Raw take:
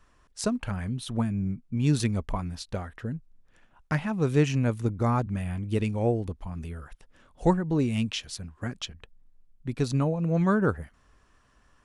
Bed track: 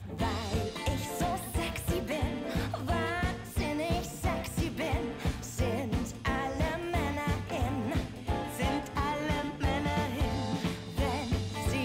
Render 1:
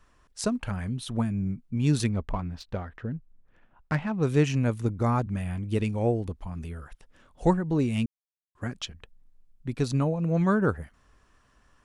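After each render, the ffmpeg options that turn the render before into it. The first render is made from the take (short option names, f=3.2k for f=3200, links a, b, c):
-filter_complex "[0:a]asettb=1/sr,asplit=3[a][b][c];[a]atrim=end=2.094[d];[b]atrim=start=2.09:end=4.23,asetpts=PTS-STARTPTS,afade=t=in:d=0.004:c=qsin,afade=t=out:st=2.136:d=0.004:c=qsin,adynamicsmooth=sensitivity=4.5:basefreq=2.9k[e];[c]atrim=start=4.226[f];[d][e]acrossfade=d=0.004:c1=hsin:c2=qsin[g];[g][f]acrossfade=d=0.004:c1=qsin:c2=hsin,asplit=3[h][i][j];[h]atrim=end=8.06,asetpts=PTS-STARTPTS,afade=t=out:st=8.056:d=0.004:c=hsin[k];[i]atrim=start=8.06:end=8.55,asetpts=PTS-STARTPTS,volume=0[l];[j]atrim=start=8.55,asetpts=PTS-STARTPTS,afade=t=in:d=0.004:c=hsin[m];[k][l][m]concat=n=3:v=0:a=1"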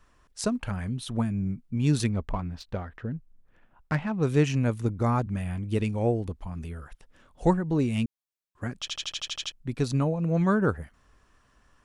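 -filter_complex "[0:a]asplit=10[a][b][c][d][e][f][g][h][i][j];[a]atrim=end=8.882[k];[b]atrim=start=8.798:end=8.882[l];[c]atrim=start=8.798:end=8.882[m];[d]atrim=start=8.798:end=8.882[n];[e]atrim=start=8.798:end=8.882[o];[f]atrim=start=8.798:end=8.882[p];[g]atrim=start=8.798:end=8.882[q];[h]atrim=start=8.798:end=8.882[r];[i]atrim=start=8.798:end=8.882[s];[j]atrim=start=9.518[t];[k][l]acrossfade=d=0.004:c1=hsin:c2=hsin[u];[u][m]acrossfade=d=0.004:c1=hsin:c2=hsin[v];[v][n]acrossfade=d=0.004:c1=hsin:c2=hsin[w];[w][o]acrossfade=d=0.004:c1=hsin:c2=hsin[x];[x][p]acrossfade=d=0.004:c1=hsin:c2=hsin[y];[y][q]acrossfade=d=0.004:c1=hsin:c2=hsin[z];[z][r]acrossfade=d=0.004:c1=hsin:c2=hsin[aa];[aa][s]acrossfade=d=0.004:c1=hsin:c2=hsin[ab];[ab][t]acrossfade=d=0.004:c1=hsin:c2=hsin"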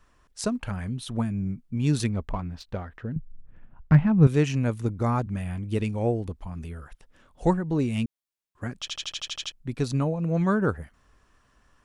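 -filter_complex "[0:a]asettb=1/sr,asplit=3[a][b][c];[a]atrim=end=3.164[d];[b]atrim=start=3.16:end=4.27,asetpts=PTS-STARTPTS,afade=t=in:d=0.004:c=qsin,afade=t=out:st=1.106:d=0.004:c=qsin,bass=f=250:g=14,treble=f=4k:g=-11[e];[c]atrim=start=4.266[f];[d][e]acrossfade=d=0.004:c1=hsin:c2=qsin[g];[g][f]acrossfade=d=0.004:c1=qsin:c2=hsin"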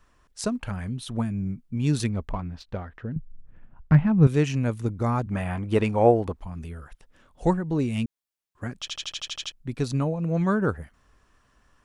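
-filter_complex "[0:a]asettb=1/sr,asplit=3[a][b][c];[a]atrim=end=2.344[d];[b]atrim=start=2.34:end=4.05,asetpts=PTS-STARTPTS,afade=t=in:d=0.004:c=qsin,afade=t=out:st=1.706:d=0.004:c=qsin,highshelf=f=8.6k:g=-9.5[e];[c]atrim=start=4.046[f];[d][e]acrossfade=d=0.004:c1=hsin:c2=qsin[g];[g][f]acrossfade=d=0.004:c1=qsin:c2=hsin,asettb=1/sr,asplit=3[h][i][j];[h]atrim=end=5.314[k];[i]atrim=start=5.31:end=6.4,asetpts=PTS-STARTPTS,afade=t=in:d=0.004:c=qsin,afade=t=out:st=1.086:d=0.004:c=qsin,equalizer=f=930:w=0.5:g=13.5[l];[j]atrim=start=6.396[m];[k][l]acrossfade=d=0.004:c1=hsin:c2=qsin[n];[n][m]acrossfade=d=0.004:c1=qsin:c2=hsin"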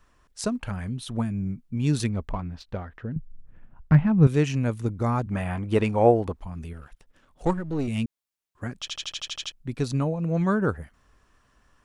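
-filter_complex "[0:a]asettb=1/sr,asplit=3[a][b][c];[a]atrim=end=6.734[d];[b]atrim=start=6.73:end=7.88,asetpts=PTS-STARTPTS,afade=t=in:d=0.004:c=qsin,afade=t=out:st=1.146:d=0.004:c=qsin,aeval=exprs='if(lt(val(0),0),0.447*val(0),val(0))':c=same[e];[c]atrim=start=7.876[f];[d][e]acrossfade=d=0.004:c1=hsin:c2=qsin[g];[g][f]acrossfade=d=0.004:c1=qsin:c2=hsin"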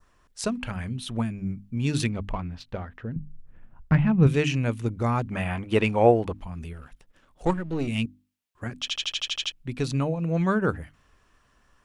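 -af "bandreject=f=50:t=h:w=6,bandreject=f=100:t=h:w=6,bandreject=f=150:t=h:w=6,bandreject=f=200:t=h:w=6,bandreject=f=250:t=h:w=6,bandreject=f=300:t=h:w=6,adynamicequalizer=threshold=0.00398:dfrequency=2700:dqfactor=1.4:tfrequency=2700:tqfactor=1.4:attack=5:release=100:ratio=0.375:range=3.5:mode=boostabove:tftype=bell"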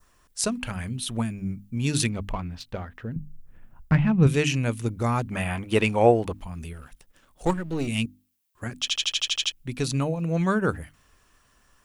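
-af "aemphasis=mode=production:type=50kf"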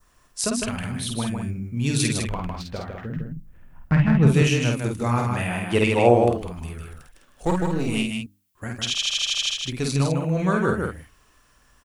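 -filter_complex "[0:a]asplit=2[a][b];[b]adelay=50,volume=-3.5dB[c];[a][c]amix=inputs=2:normalize=0,aecho=1:1:155:0.596"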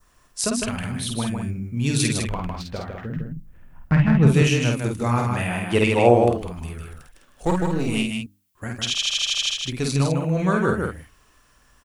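-af "volume=1dB"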